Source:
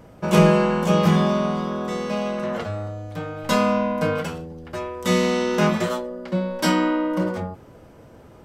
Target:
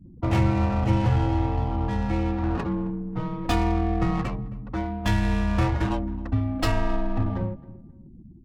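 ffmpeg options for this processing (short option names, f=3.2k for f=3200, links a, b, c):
-filter_complex "[0:a]afftfilt=real='re*gte(hypot(re,im),0.0141)':imag='im*gte(hypot(re,im),0.0141)':win_size=1024:overlap=0.75,adynamicequalizer=threshold=0.0126:dfrequency=260:dqfactor=4:tfrequency=260:tqfactor=4:attack=5:release=100:ratio=0.375:range=3:mode=boostabove:tftype=bell,acompressor=threshold=-23dB:ratio=2.5,afreqshift=-290,adynamicsmooth=sensitivity=5.5:basefreq=840,asplit=2[a][b];[b]adelay=267,lowpass=f=2k:p=1,volume=-20dB,asplit=2[c][d];[d]adelay=267,lowpass=f=2k:p=1,volume=0.29[e];[c][e]amix=inputs=2:normalize=0[f];[a][f]amix=inputs=2:normalize=0,volume=2dB"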